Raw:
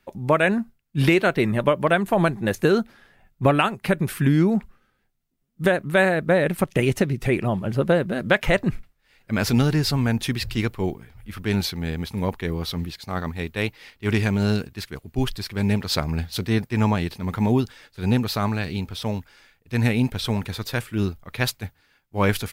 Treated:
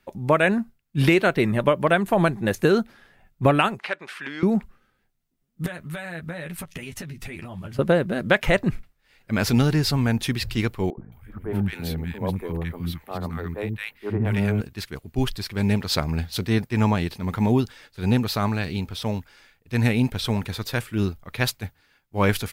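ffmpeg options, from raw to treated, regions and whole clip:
ffmpeg -i in.wav -filter_complex "[0:a]asettb=1/sr,asplit=3[link_01][link_02][link_03];[link_01]atrim=end=3.794[link_04];[link_02]atrim=start=3.79:end=4.43,asetpts=PTS-STARTPTS,afade=type=in:duration=0.004:curve=qsin,afade=type=out:start_time=0.636:duration=0.004:curve=qsin,acompressor=mode=upward:threshold=-28dB:ratio=2.5:attack=3.2:release=140:knee=2.83:detection=peak,volume=11dB,asoftclip=hard,volume=-11dB,highpass=790,lowpass=4200[link_05];[link_03]atrim=start=4.426[link_06];[link_04][link_05]acrossfade=duration=0.004:curve1=hsin:curve2=qsin[link_07];[link_07][link_06]acrossfade=duration=0.004:curve1=qsin:curve2=hsin,asettb=1/sr,asplit=3[link_08][link_09][link_10];[link_08]atrim=end=5.664[link_11];[link_09]atrim=start=5.66:end=7.79,asetpts=PTS-STARTPTS,afade=type=in:duration=0.004:curve=qsin,afade=type=out:start_time=2.126:duration=0.004:curve=qsin,equalizer=frequency=420:width=0.57:gain=-10.5,acompressor=threshold=-31dB:ratio=10:attack=3.2:release=140:knee=1:detection=peak,asplit=2[link_12][link_13];[link_13]adelay=12,volume=-4.5dB[link_14];[link_12][link_14]amix=inputs=2:normalize=0,atrim=end_sample=93933[link_15];[link_10]atrim=start=7.786[link_16];[link_11][link_15]acrossfade=duration=0.004:curve1=hsin:curve2=qsin[link_17];[link_17][link_16]acrossfade=duration=0.004:curve1=qsin:curve2=hsin,asettb=1/sr,asplit=3[link_18][link_19][link_20];[link_18]atrim=end=10.904[link_21];[link_19]atrim=start=10.9:end=14.61,asetpts=PTS-STARTPTS,afade=type=in:duration=0.004:curve=qsin,afade=type=out:start_time=3.706:duration=0.004:curve=qsin,equalizer=frequency=5400:width=0.86:gain=-12.5,acrossover=split=280|1300[link_22][link_23][link_24];[link_22]adelay=70[link_25];[link_24]adelay=220[link_26];[link_25][link_23][link_26]amix=inputs=3:normalize=0,atrim=end_sample=163611[link_27];[link_20]atrim=start=14.606[link_28];[link_21][link_27]acrossfade=duration=0.004:curve1=hsin:curve2=qsin[link_29];[link_29][link_28]acrossfade=duration=0.004:curve1=qsin:curve2=hsin" out.wav

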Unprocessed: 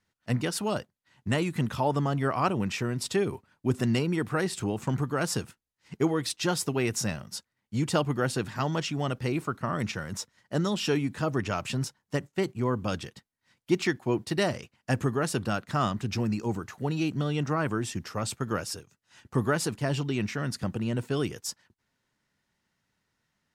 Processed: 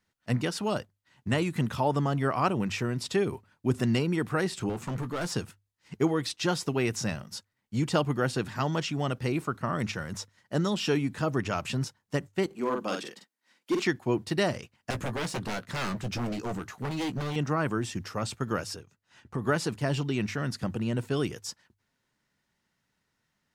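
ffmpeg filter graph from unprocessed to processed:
ffmpeg -i in.wav -filter_complex "[0:a]asettb=1/sr,asplit=3[link_01][link_02][link_03];[link_01]atrim=end=4.694[link_04];[link_02]atrim=start=4.69:end=5.32,asetpts=PTS-STARTPTS,afade=type=in:duration=0.004:curve=qsin,afade=type=out:start_time=0.626:duration=0.004:curve=qsin,highpass=100,asoftclip=type=hard:threshold=-28.5dB,asplit=2[link_05][link_06];[link_06]adelay=17,volume=-12dB[link_07];[link_05][link_07]amix=inputs=2:normalize=0,atrim=end_sample=27783[link_08];[link_03]atrim=start=5.316[link_09];[link_04][link_08]acrossfade=duration=0.004:curve1=hsin:curve2=qsin[link_10];[link_10][link_09]acrossfade=duration=0.004:curve1=qsin:curve2=hsin,asettb=1/sr,asplit=3[link_11][link_12][link_13];[link_11]atrim=end=12.464[link_14];[link_12]atrim=start=12.46:end=13.84,asetpts=PTS-STARTPTS,afade=type=in:duration=0.004:curve=qsin,afade=type=out:start_time=1.376:duration=0.004:curve=qsin,highpass=frequency=230:width=0.5412,highpass=frequency=230:width=1.3066,volume=21.5dB,asoftclip=hard,volume=-21.5dB,asplit=2[link_15][link_16];[link_16]adelay=46,volume=-4dB[link_17];[link_15][link_17]amix=inputs=2:normalize=0,atrim=end_sample=60858[link_18];[link_13]atrim=start=13.836[link_19];[link_14][link_18]acrossfade=duration=0.004:curve1=hsin:curve2=qsin[link_20];[link_20][link_19]acrossfade=duration=0.004:curve1=qsin:curve2=hsin,asettb=1/sr,asplit=3[link_21][link_22][link_23];[link_21]atrim=end=14.904[link_24];[link_22]atrim=start=14.9:end=17.36,asetpts=PTS-STARTPTS,afade=type=in:duration=0.004:curve=qsin,afade=type=out:start_time=2.456:duration=0.004:curve=qsin,aeval=exprs='0.0473*(abs(mod(val(0)/0.0473+3,4)-2)-1)':channel_layout=same,asplit=2[link_25][link_26];[link_26]adelay=16,volume=-9.5dB[link_27];[link_25][link_27]amix=inputs=2:normalize=0,atrim=end_sample=108486[link_28];[link_23]atrim=start=17.356[link_29];[link_24][link_28]acrossfade=duration=0.004:curve1=hsin:curve2=qsin[link_30];[link_30][link_29]acrossfade=duration=0.004:curve1=qsin:curve2=hsin,asettb=1/sr,asplit=3[link_31][link_32][link_33];[link_31]atrim=end=18.764[link_34];[link_32]atrim=start=18.76:end=19.47,asetpts=PTS-STARTPTS,afade=type=in:duration=0.004:curve=qsin,afade=type=out:start_time=0.706:duration=0.004:curve=qsin,highshelf=frequency=4600:gain=-8,acompressor=threshold=-29dB:ratio=2.5:attack=3.2:release=140:knee=1:detection=peak[link_35];[link_33]atrim=start=19.466[link_36];[link_34][link_35]acrossfade=duration=0.004:curve1=hsin:curve2=qsin[link_37];[link_37][link_36]acrossfade=duration=0.004:curve1=qsin:curve2=hsin,bandreject=frequency=50:width_type=h:width=6,bandreject=frequency=100:width_type=h:width=6,acrossover=split=6500[link_38][link_39];[link_39]acompressor=threshold=-44dB:ratio=4:attack=1:release=60[link_40];[link_38][link_40]amix=inputs=2:normalize=0" out.wav

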